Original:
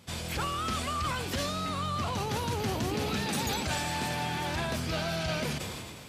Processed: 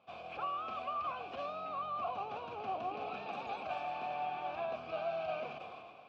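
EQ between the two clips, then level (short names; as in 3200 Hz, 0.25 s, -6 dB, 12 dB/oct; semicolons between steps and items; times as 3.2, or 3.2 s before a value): vowel filter a; air absorption 190 m; +5.0 dB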